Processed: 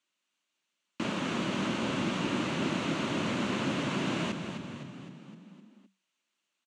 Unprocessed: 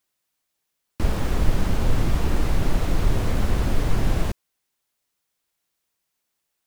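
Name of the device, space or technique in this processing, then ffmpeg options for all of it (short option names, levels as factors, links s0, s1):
television speaker: -filter_complex "[0:a]asplit=7[s0][s1][s2][s3][s4][s5][s6];[s1]adelay=257,afreqshift=32,volume=0.376[s7];[s2]adelay=514,afreqshift=64,volume=0.2[s8];[s3]adelay=771,afreqshift=96,volume=0.106[s9];[s4]adelay=1028,afreqshift=128,volume=0.0562[s10];[s5]adelay=1285,afreqshift=160,volume=0.0295[s11];[s6]adelay=1542,afreqshift=192,volume=0.0157[s12];[s0][s7][s8][s9][s10][s11][s12]amix=inputs=7:normalize=0,highpass=f=190:w=0.5412,highpass=f=190:w=1.3066,equalizer=f=450:t=q:w=4:g=-9,equalizer=f=760:t=q:w=4:g=-8,equalizer=f=1800:t=q:w=4:g=-3,equalizer=f=2800:t=q:w=4:g=5,equalizer=f=5100:t=q:w=4:g=-8,lowpass=f=6900:w=0.5412,lowpass=f=6900:w=1.3066"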